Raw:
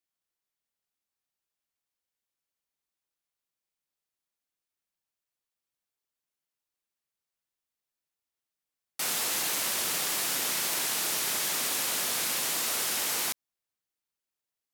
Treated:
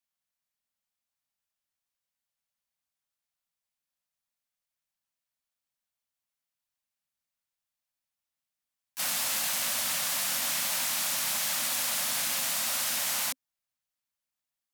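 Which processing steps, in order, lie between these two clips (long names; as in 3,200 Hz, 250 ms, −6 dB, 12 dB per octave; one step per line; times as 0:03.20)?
elliptic band-stop filter 260–530 Hz
pitch-shifted copies added +4 semitones −5 dB
level −1 dB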